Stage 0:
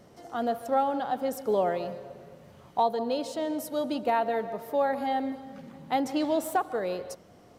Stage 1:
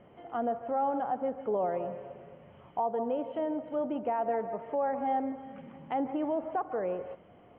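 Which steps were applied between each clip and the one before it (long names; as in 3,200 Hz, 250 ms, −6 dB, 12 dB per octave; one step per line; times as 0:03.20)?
brickwall limiter −21 dBFS, peak gain reduction 6 dB
Chebyshev low-pass with heavy ripple 3,200 Hz, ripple 3 dB
treble cut that deepens with the level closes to 1,500 Hz, closed at −30 dBFS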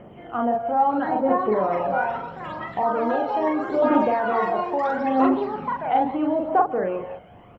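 delay with pitch and tempo change per echo 768 ms, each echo +5 semitones, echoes 3, each echo −6 dB
double-tracking delay 42 ms −2.5 dB
phase shifter 0.76 Hz, delay 1.4 ms, feedback 46%
level +7 dB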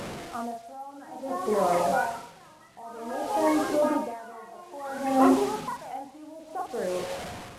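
linear delta modulator 64 kbit/s, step −30 dBFS
tremolo with a sine in dB 0.56 Hz, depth 22 dB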